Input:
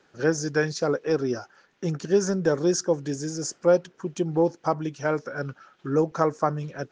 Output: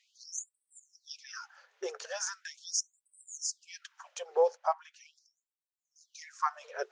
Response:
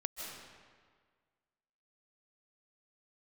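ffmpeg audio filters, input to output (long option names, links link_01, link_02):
-filter_complex "[0:a]asettb=1/sr,asplit=3[link_01][link_02][link_03];[link_01]atrim=end=4.574[link_04];[link_02]atrim=start=4.57:end=6.01,asetpts=PTS-STARTPTS,afade=type=in:duration=0.004:curve=qsin,afade=type=out:start_time=1.436:duration=0.004:curve=qsin,highshelf=frequency=2000:gain=-10[link_05];[link_03]atrim=start=6.006[link_06];[link_04][link_05]acrossfade=duration=0.004:curve1=hsin:curve2=qsin[link_07];[link_07][link_06]acrossfade=duration=0.004:curve1=qsin:curve2=hsin,afftfilt=real='re*gte(b*sr/1024,380*pow(7900/380,0.5+0.5*sin(2*PI*0.4*pts/sr)))':imag='im*gte(b*sr/1024,380*pow(7900/380,0.5+0.5*sin(2*PI*0.4*pts/sr)))':win_size=1024:overlap=0.75,volume=-1.5dB"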